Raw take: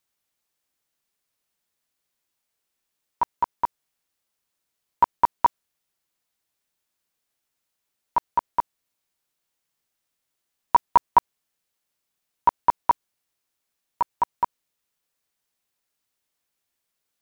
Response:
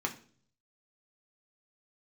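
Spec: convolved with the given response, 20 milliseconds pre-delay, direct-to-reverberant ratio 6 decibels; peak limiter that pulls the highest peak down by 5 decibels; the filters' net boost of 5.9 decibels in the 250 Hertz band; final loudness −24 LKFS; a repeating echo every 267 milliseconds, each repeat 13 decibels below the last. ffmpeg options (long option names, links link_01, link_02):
-filter_complex "[0:a]equalizer=frequency=250:width_type=o:gain=7.5,alimiter=limit=-10dB:level=0:latency=1,aecho=1:1:267|534|801:0.224|0.0493|0.0108,asplit=2[link_01][link_02];[1:a]atrim=start_sample=2205,adelay=20[link_03];[link_02][link_03]afir=irnorm=-1:irlink=0,volume=-11dB[link_04];[link_01][link_04]amix=inputs=2:normalize=0,volume=2dB"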